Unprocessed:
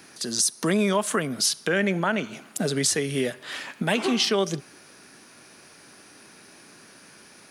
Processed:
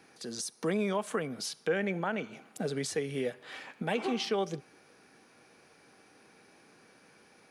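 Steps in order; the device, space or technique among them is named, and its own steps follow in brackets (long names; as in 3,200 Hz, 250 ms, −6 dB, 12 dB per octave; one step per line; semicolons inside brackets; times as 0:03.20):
inside a helmet (high-shelf EQ 4,400 Hz −9 dB; hollow resonant body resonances 480/780/2,300 Hz, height 8 dB)
level −9 dB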